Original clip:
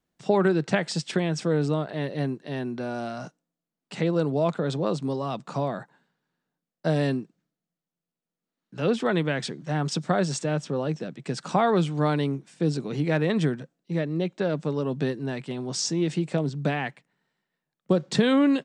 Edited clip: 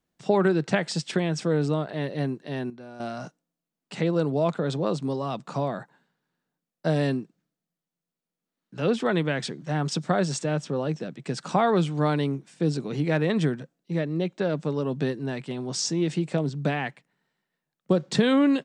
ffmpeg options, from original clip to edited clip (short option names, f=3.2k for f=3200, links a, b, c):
-filter_complex "[0:a]asplit=3[a][b][c];[a]atrim=end=2.702[d];[b]atrim=start=2.698:end=3.002,asetpts=PTS-STARTPTS,volume=-11.5dB[e];[c]atrim=start=2.998[f];[d][e]acrossfade=d=0.004:c1=hsin:c2=hsin[g];[g][f]acrossfade=d=0.004:c1=hsin:c2=hsin"